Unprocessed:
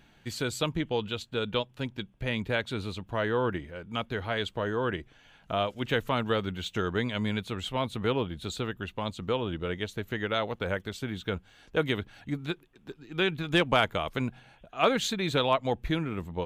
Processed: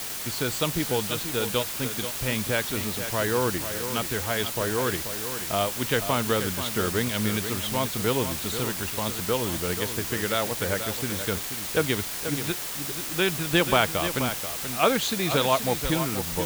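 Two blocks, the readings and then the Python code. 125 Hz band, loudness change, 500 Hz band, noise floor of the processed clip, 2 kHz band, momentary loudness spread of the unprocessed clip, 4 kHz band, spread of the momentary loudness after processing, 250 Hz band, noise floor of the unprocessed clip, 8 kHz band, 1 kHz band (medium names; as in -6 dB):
+3.0 dB, +5.0 dB, +3.0 dB, -33 dBFS, +3.5 dB, 10 LU, +5.0 dB, 6 LU, +3.0 dB, -60 dBFS, +17.0 dB, +3.5 dB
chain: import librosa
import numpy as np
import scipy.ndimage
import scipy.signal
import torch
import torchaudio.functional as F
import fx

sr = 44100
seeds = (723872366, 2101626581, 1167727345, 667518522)

y = fx.quant_dither(x, sr, seeds[0], bits=6, dither='triangular')
y = y + 10.0 ** (-9.5 / 20.0) * np.pad(y, (int(483 * sr / 1000.0), 0))[:len(y)]
y = F.gain(torch.from_numpy(y), 2.5).numpy()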